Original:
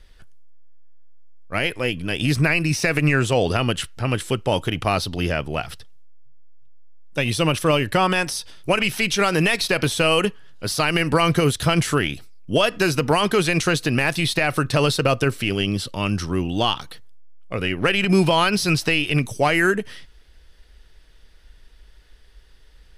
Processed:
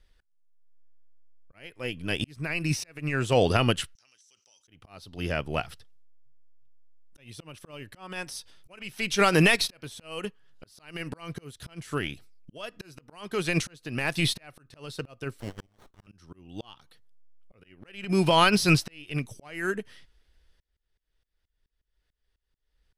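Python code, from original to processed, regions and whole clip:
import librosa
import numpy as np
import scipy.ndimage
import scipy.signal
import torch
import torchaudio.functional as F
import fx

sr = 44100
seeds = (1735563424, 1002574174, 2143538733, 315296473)

y = fx.chain(x, sr, fx.bandpass_q(hz=5900.0, q=12.0),
    fx.env_flatten(amount_pct=70), at=(3.95, 4.68))
y = fx.chain(y, sr, fx.steep_highpass(hz=1200.0, slope=48),
    fx.running_max(window=17), at=(15.4, 16.07))
y = fx.auto_swell(y, sr, attack_ms=616.0)
y = fx.upward_expand(y, sr, threshold_db=-43.0, expansion=1.5)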